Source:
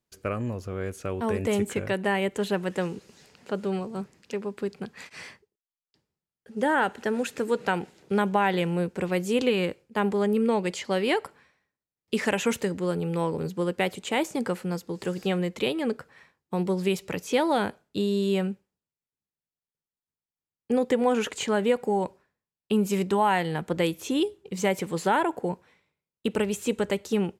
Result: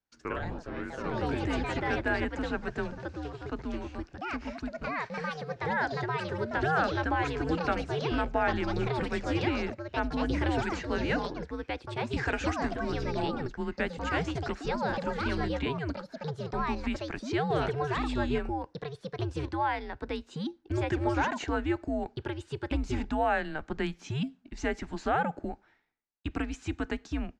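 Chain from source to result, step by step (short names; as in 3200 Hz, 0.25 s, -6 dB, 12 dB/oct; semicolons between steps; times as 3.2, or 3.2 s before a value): echoes that change speed 92 ms, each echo +3 st, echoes 3; speaker cabinet 170–6200 Hz, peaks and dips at 1000 Hz +4 dB, 1700 Hz +7 dB, 3400 Hz -3 dB; frequency shift -150 Hz; gain -6.5 dB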